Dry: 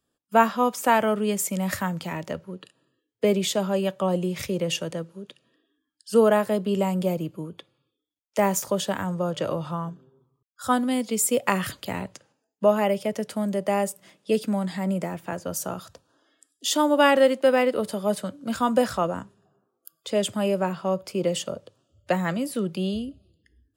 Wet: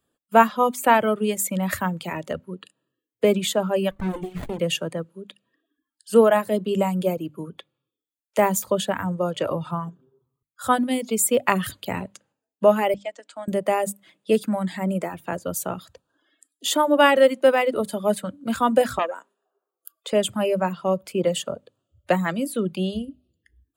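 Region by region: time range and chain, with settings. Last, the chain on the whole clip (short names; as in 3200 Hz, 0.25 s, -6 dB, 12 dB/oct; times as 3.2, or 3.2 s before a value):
3.91–4.59 notches 60/120/180/240/300/360/420/480/540 Hz + dynamic EQ 640 Hz, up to -5 dB, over -37 dBFS, Q 0.94 + running maximum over 33 samples
12.94–13.48 Chebyshev band-pass 300–7900 Hz, order 4 + bell 420 Hz -12.5 dB 0.63 oct + upward expander, over -42 dBFS
18.99–20.13 HPF 400 Hz 24 dB/oct + core saturation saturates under 1300 Hz
whole clip: bell 5400 Hz -9.5 dB 0.46 oct; notches 50/100/150/200/250/300 Hz; reverb removal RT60 0.83 s; gain +3.5 dB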